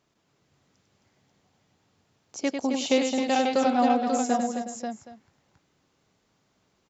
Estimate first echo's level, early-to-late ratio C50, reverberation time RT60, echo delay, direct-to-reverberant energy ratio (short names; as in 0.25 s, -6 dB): -6.0 dB, none, none, 98 ms, none